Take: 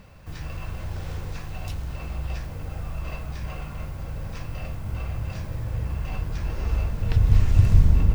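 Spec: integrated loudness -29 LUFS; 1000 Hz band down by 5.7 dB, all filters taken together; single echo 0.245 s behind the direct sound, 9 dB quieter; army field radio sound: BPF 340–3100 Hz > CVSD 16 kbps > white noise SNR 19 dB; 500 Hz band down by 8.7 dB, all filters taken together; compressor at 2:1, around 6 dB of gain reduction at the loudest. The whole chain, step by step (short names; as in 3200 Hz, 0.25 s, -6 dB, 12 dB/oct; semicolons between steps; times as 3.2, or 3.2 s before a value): bell 500 Hz -8.5 dB; bell 1000 Hz -4.5 dB; compressor 2:1, threshold -20 dBFS; BPF 340–3100 Hz; echo 0.245 s -9 dB; CVSD 16 kbps; white noise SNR 19 dB; gain +17 dB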